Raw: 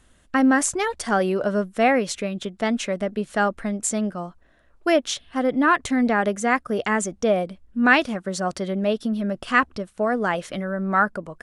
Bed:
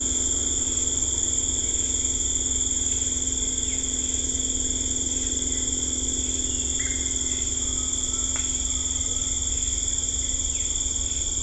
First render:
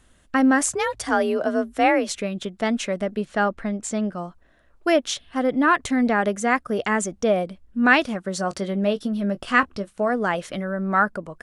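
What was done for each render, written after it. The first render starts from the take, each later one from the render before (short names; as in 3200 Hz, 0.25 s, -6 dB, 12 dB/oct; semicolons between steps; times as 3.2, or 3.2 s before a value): 0.66–2.09 frequency shift +43 Hz; 3.25–4.13 air absorption 70 m; 8.37–10.1 doubler 20 ms -12 dB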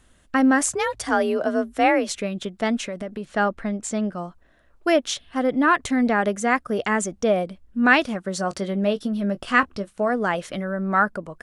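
2.77–3.25 compressor, threshold -26 dBFS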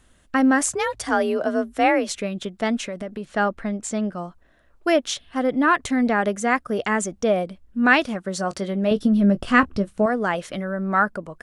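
8.91–10.06 low shelf 350 Hz +10.5 dB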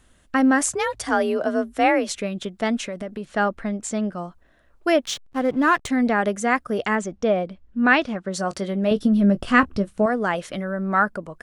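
5.05–5.88 backlash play -32.5 dBFS; 6.95–8.34 air absorption 100 m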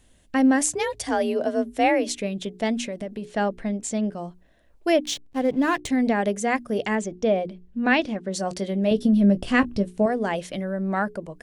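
bell 1300 Hz -11.5 dB 0.67 oct; notches 60/120/180/240/300/360/420 Hz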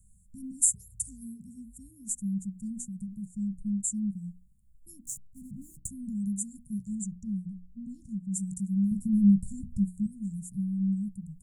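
Chebyshev band-stop 200–7300 Hz, order 5; dynamic EQ 9600 Hz, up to +4 dB, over -47 dBFS, Q 0.81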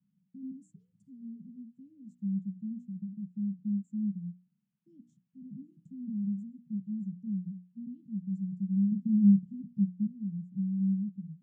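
Chebyshev band-pass 160–3100 Hz, order 4; dynamic EQ 730 Hz, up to +4 dB, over -55 dBFS, Q 2.4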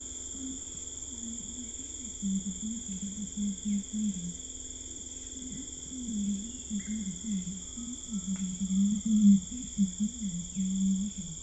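add bed -16.5 dB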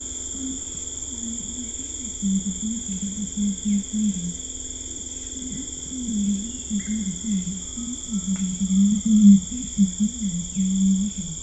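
gain +9 dB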